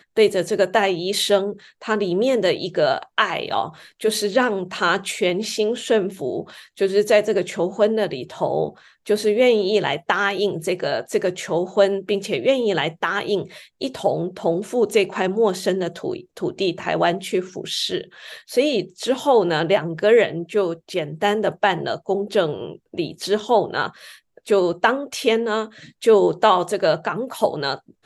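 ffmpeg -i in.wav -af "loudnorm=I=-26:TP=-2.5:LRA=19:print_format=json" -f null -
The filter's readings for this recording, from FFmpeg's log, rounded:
"input_i" : "-20.9",
"input_tp" : "-2.4",
"input_lra" : "2.3",
"input_thresh" : "-31.1",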